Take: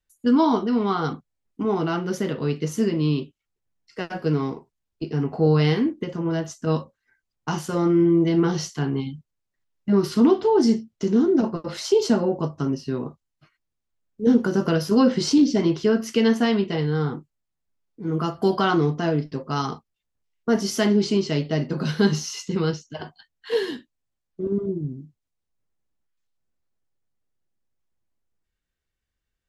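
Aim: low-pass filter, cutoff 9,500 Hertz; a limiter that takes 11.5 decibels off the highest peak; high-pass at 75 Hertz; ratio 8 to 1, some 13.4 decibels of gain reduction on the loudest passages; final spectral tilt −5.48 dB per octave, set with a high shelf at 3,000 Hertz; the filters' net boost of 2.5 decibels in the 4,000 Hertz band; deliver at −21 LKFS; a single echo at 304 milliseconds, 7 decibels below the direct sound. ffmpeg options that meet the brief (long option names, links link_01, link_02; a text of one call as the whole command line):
ffmpeg -i in.wav -af "highpass=75,lowpass=9500,highshelf=frequency=3000:gain=-6,equalizer=frequency=4000:width_type=o:gain=8.5,acompressor=threshold=-27dB:ratio=8,alimiter=level_in=1.5dB:limit=-24dB:level=0:latency=1,volume=-1.5dB,aecho=1:1:304:0.447,volume=13.5dB" out.wav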